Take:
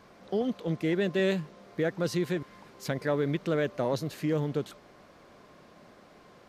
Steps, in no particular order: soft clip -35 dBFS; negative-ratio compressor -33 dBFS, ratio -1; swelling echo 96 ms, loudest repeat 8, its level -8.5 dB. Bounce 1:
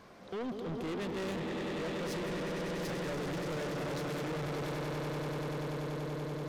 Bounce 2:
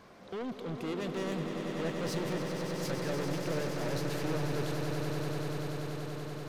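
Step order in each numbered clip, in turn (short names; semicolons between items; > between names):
swelling echo > soft clip > negative-ratio compressor; soft clip > negative-ratio compressor > swelling echo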